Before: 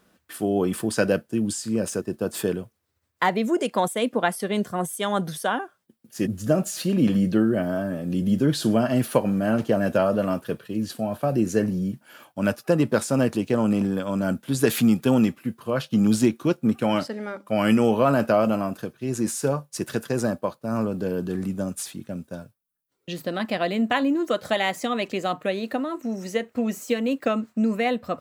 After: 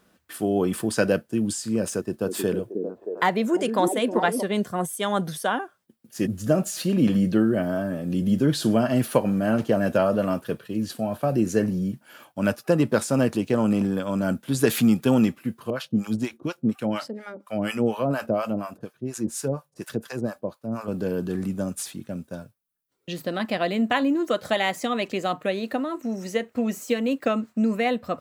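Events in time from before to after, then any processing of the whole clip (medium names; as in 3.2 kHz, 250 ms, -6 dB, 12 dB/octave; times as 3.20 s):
1.92–4.43 s: repeats whose band climbs or falls 313 ms, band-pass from 310 Hz, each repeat 0.7 oct, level -2 dB
15.70–20.88 s: harmonic tremolo 4.2 Hz, depth 100%, crossover 680 Hz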